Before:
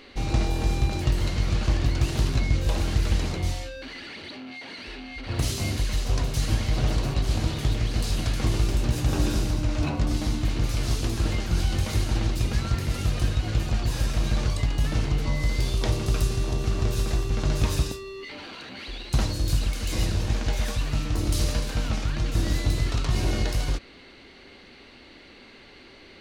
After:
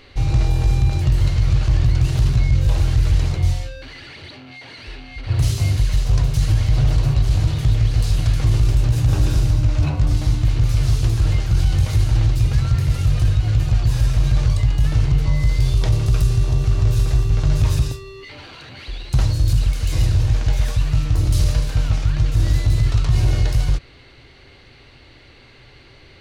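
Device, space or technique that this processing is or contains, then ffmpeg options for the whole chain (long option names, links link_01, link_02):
car stereo with a boomy subwoofer: -af "lowshelf=frequency=160:width_type=q:width=3:gain=7,alimiter=limit=-9dB:level=0:latency=1:release=11,volume=1dB"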